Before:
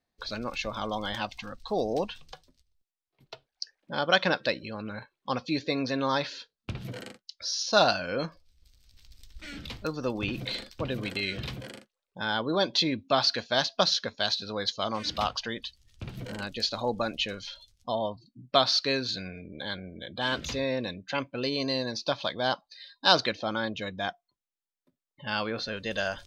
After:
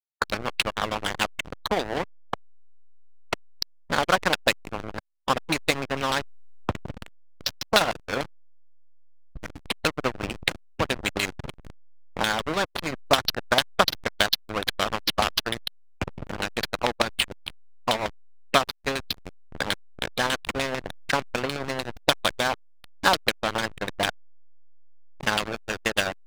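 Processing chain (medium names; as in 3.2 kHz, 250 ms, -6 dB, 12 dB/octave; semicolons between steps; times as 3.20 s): peaking EQ 120 Hz -4.5 dB 0.22 oct; transient shaper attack +12 dB, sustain -11 dB; reverse; upward compressor, threshold -43 dBFS; reverse; LFO low-pass saw down 6.7 Hz 730–3500 Hz; hysteresis with a dead band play -24 dBFS; spectrum-flattening compressor 2:1; trim -6 dB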